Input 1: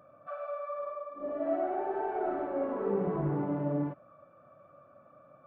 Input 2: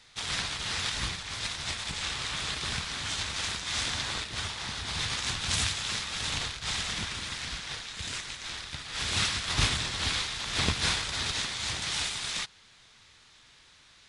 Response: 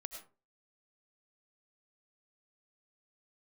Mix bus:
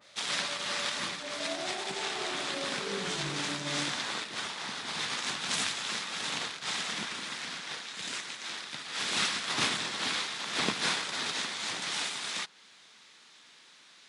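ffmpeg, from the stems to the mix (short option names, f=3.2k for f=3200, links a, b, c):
-filter_complex "[0:a]volume=-8dB[a];[1:a]highpass=f=190:w=0.5412,highpass=f=190:w=1.3066,adynamicequalizer=threshold=0.00794:dfrequency=2200:dqfactor=0.7:tfrequency=2200:tqfactor=0.7:attack=5:release=100:ratio=0.375:range=2:mode=cutabove:tftype=highshelf,volume=1dB[b];[a][b]amix=inputs=2:normalize=0"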